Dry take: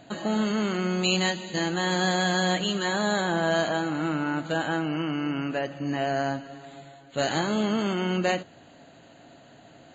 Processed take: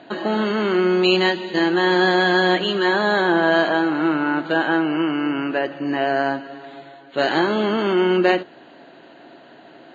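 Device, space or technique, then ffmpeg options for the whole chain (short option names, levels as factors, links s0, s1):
kitchen radio: -af "highpass=230,equalizer=f=360:t=q:w=4:g=9,equalizer=f=970:t=q:w=4:g=4,equalizer=f=1600:t=q:w=4:g=4,lowpass=f=4400:w=0.5412,lowpass=f=4400:w=1.3066,volume=1.88"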